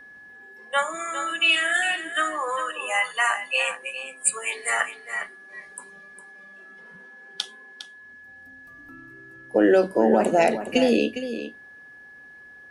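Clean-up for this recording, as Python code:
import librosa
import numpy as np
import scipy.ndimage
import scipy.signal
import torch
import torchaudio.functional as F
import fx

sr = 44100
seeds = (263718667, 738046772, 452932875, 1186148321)

y = fx.notch(x, sr, hz=1700.0, q=30.0)
y = fx.fix_echo_inverse(y, sr, delay_ms=407, level_db=-11.0)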